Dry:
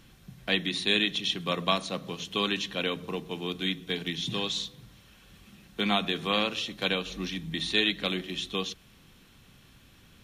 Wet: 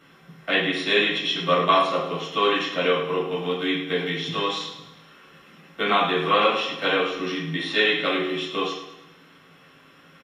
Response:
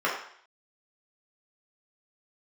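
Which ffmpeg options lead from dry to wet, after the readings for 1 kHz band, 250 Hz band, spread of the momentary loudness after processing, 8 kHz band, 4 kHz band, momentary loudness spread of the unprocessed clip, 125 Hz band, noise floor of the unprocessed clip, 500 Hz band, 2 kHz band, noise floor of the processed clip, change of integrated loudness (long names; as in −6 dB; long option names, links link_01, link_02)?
+12.0 dB, +4.0 dB, 8 LU, −3.0 dB, +2.5 dB, 10 LU, +3.0 dB, −57 dBFS, +10.0 dB, +7.5 dB, −53 dBFS, +6.5 dB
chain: -filter_complex "[0:a]aecho=1:1:106|212|318|424|530:0.299|0.14|0.0659|0.031|0.0146[link_01];[1:a]atrim=start_sample=2205,afade=type=out:start_time=0.16:duration=0.01,atrim=end_sample=7497[link_02];[link_01][link_02]afir=irnorm=-1:irlink=0,volume=-4dB"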